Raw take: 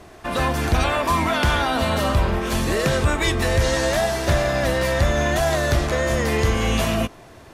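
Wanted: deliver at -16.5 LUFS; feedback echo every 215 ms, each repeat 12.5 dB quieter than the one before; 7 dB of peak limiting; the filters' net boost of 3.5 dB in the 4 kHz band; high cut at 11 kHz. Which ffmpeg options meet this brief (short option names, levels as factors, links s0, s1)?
-af "lowpass=11000,equalizer=f=4000:t=o:g=4.5,alimiter=limit=0.168:level=0:latency=1,aecho=1:1:215|430|645:0.237|0.0569|0.0137,volume=2.37"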